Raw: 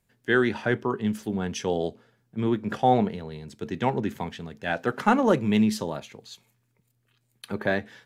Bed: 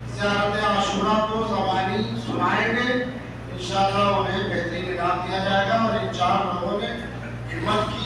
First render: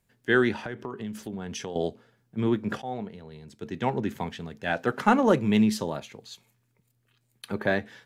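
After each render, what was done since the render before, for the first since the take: 0.54–1.76 compressor, threshold -31 dBFS; 2.82–4.23 fade in, from -17 dB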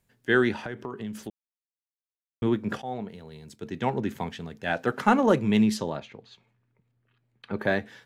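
1.3–2.42 mute; 3.08–3.56 high shelf 5400 Hz +9 dB; 5.26–7.59 low-pass opened by the level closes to 2300 Hz, open at -18 dBFS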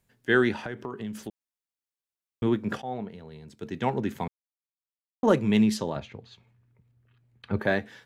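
2.8–3.56 high shelf 7100 Hz -> 4400 Hz -11 dB; 4.28–5.23 mute; 5.96–7.6 bell 76 Hz +14 dB 1.5 oct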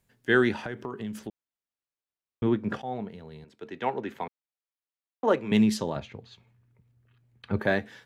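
1.19–2.81 LPF 2800 Hz 6 dB/oct; 3.44–5.52 three-band isolator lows -14 dB, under 320 Hz, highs -12 dB, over 3900 Hz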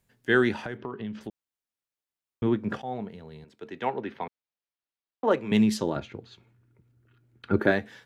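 0.77–1.21 LPF 4200 Hz 24 dB/oct; 3.88–5.31 polynomial smoothing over 15 samples; 5.81–7.7 small resonant body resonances 330/1400 Hz, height 9 dB -> 13 dB, ringing for 30 ms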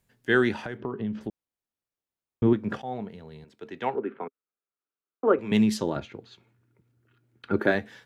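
0.8–2.53 tilt shelf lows +5 dB, about 1100 Hz; 3.95–5.39 speaker cabinet 190–2200 Hz, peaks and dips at 270 Hz +3 dB, 410 Hz +7 dB, 630 Hz -3 dB, 890 Hz -6 dB, 1300 Hz +7 dB, 1900 Hz -8 dB; 6.05–7.75 HPF 160 Hz 6 dB/oct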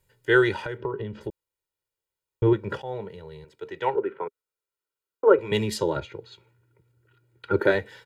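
notch 5800 Hz, Q 13; comb 2.1 ms, depth 100%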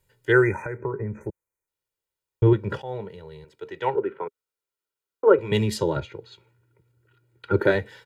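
0.32–1.68 spectral delete 2500–5700 Hz; dynamic EQ 120 Hz, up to +6 dB, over -39 dBFS, Q 0.75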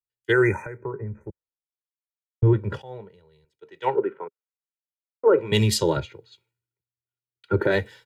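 limiter -13.5 dBFS, peak gain reduction 9.5 dB; three-band expander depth 100%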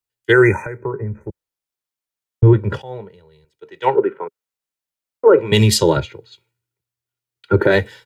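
gain +7.5 dB; limiter -1 dBFS, peak gain reduction 2 dB

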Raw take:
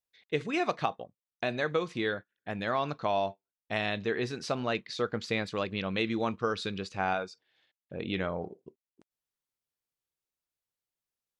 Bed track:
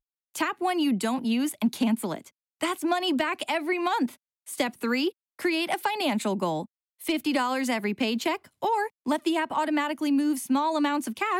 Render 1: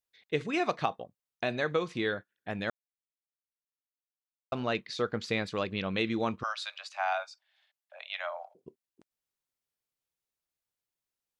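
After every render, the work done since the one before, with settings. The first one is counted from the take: 2.7–4.52 mute; 6.43–8.55 steep high-pass 590 Hz 96 dB/oct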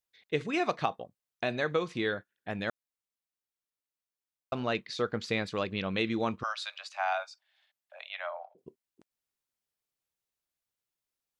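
8.09–8.58 air absorption 180 m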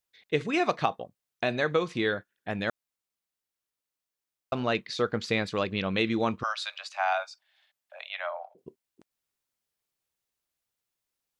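gain +3.5 dB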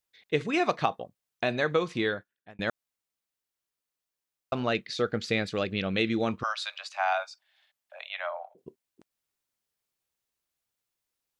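2.01–2.59 fade out; 4.69–6.29 bell 1000 Hz -12.5 dB 0.3 oct; 7.99–8.57 notch 4900 Hz, Q 7.7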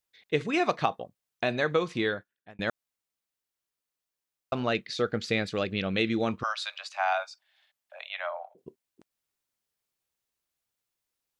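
nothing audible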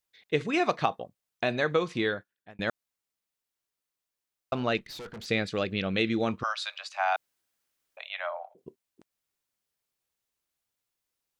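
4.77–5.26 tube stage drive 39 dB, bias 0.4; 7.16–7.97 room tone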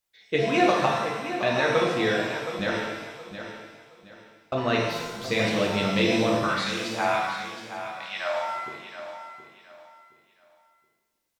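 feedback echo 0.72 s, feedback 29%, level -10.5 dB; shimmer reverb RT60 1.1 s, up +7 st, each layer -8 dB, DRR -2.5 dB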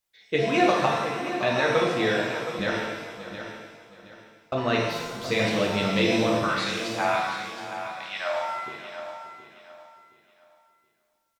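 echo 0.582 s -15 dB

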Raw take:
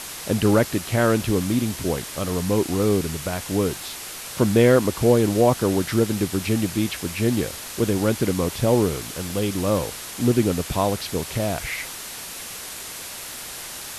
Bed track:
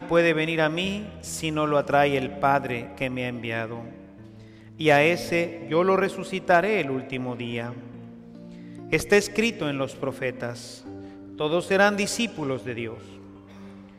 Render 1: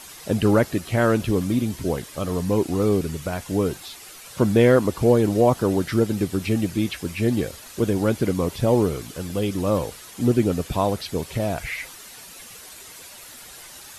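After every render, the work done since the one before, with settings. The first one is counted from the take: denoiser 10 dB, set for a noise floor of -35 dBFS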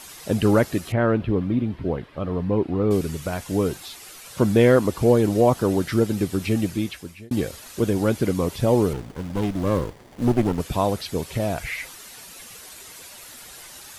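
0.92–2.91 air absorption 420 m; 6.66–7.31 fade out; 8.93–10.6 running maximum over 33 samples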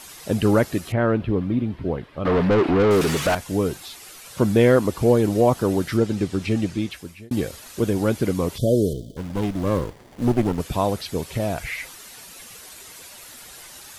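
2.25–3.35 overdrive pedal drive 28 dB, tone 2700 Hz, clips at -10.5 dBFS; 5.97–6.91 LPF 7200 Hz; 8.58–9.17 brick-wall FIR band-stop 690–3000 Hz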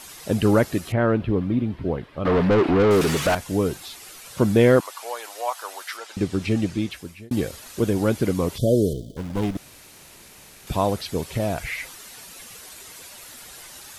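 4.8–6.17 HPF 810 Hz 24 dB/oct; 9.57–10.67 room tone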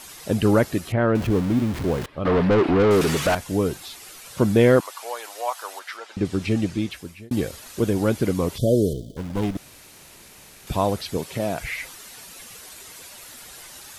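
1.15–2.06 zero-crossing step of -27.5 dBFS; 5.79–6.25 LPF 3300 Hz 6 dB/oct; 11.17–11.61 HPF 140 Hz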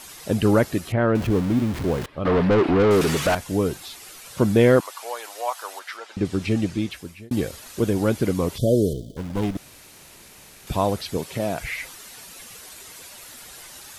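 nothing audible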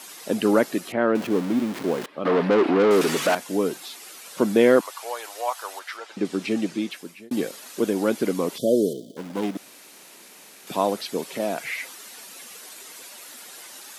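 HPF 210 Hz 24 dB/oct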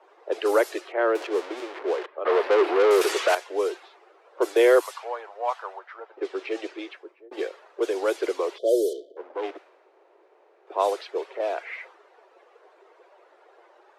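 low-pass opened by the level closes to 650 Hz, open at -15.5 dBFS; steep high-pass 350 Hz 72 dB/oct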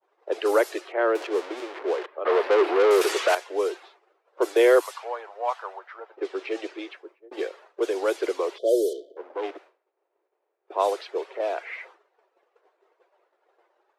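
expander -46 dBFS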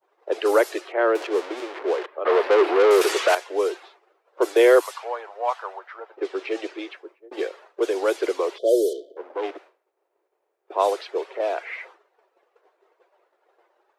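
gain +2.5 dB

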